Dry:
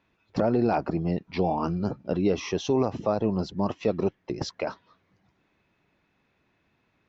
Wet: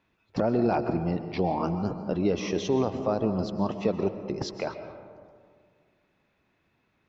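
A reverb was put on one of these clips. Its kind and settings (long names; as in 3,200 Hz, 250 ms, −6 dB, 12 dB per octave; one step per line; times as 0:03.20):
comb and all-pass reverb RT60 2 s, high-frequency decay 0.35×, pre-delay 90 ms, DRR 9 dB
level −1.5 dB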